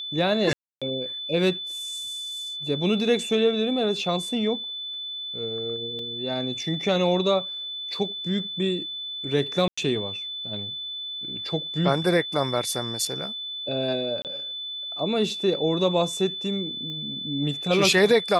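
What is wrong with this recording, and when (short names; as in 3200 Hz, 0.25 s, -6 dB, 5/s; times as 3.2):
tone 3500 Hz -31 dBFS
0.53–0.82 gap 0.286 s
5.99 gap 2.2 ms
9.68–9.78 gap 95 ms
14.22–14.25 gap 28 ms
16.9 pop -26 dBFS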